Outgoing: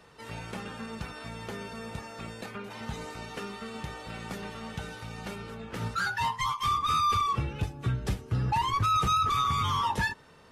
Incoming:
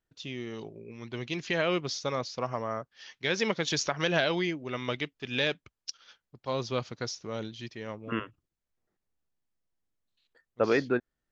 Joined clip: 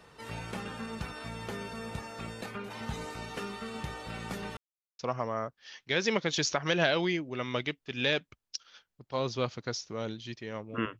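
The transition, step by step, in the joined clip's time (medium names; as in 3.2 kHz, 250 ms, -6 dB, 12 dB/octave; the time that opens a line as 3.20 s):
outgoing
4.57–4.99 s: mute
4.99 s: go over to incoming from 2.33 s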